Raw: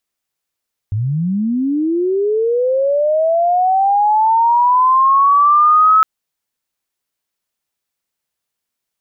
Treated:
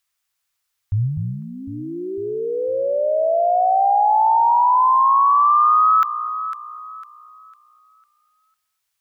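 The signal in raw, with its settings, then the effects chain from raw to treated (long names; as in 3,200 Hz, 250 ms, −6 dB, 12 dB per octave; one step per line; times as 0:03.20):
glide linear 97 Hz → 1,300 Hz −15 dBFS → −6.5 dBFS 5.11 s
drawn EQ curve 120 Hz 0 dB, 210 Hz −19 dB, 1,200 Hz +4 dB
downward compressor 5 to 1, threshold −14 dBFS
delay that swaps between a low-pass and a high-pass 251 ms, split 860 Hz, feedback 57%, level −6.5 dB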